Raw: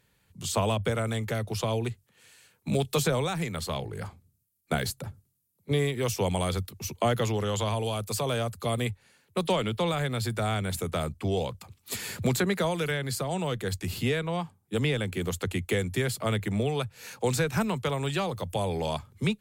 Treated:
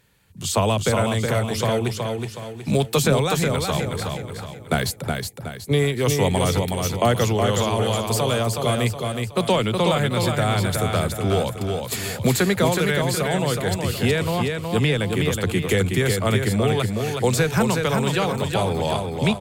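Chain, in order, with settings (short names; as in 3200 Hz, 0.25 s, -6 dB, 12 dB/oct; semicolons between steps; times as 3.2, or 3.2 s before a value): feedback echo 0.369 s, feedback 42%, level -4.5 dB; gain +6.5 dB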